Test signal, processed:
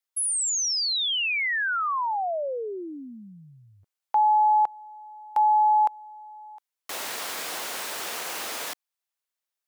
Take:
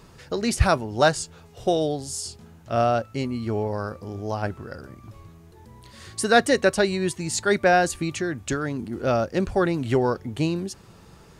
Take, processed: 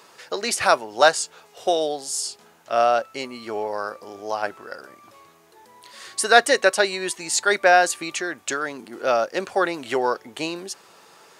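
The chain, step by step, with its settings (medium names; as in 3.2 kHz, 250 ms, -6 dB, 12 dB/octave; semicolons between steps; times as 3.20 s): high-pass 560 Hz 12 dB/octave; trim +5 dB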